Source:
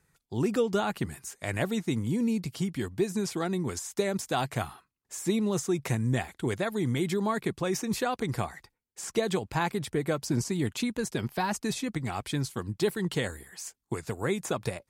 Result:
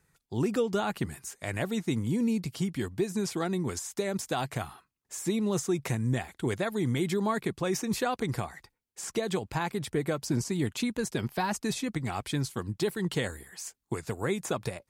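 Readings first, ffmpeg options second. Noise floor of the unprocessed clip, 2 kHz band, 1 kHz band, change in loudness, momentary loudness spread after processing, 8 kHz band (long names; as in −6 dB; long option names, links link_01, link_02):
−81 dBFS, −1.0 dB, −1.0 dB, −1.0 dB, 8 LU, −0.5 dB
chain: -af "alimiter=limit=-18.5dB:level=0:latency=1:release=224"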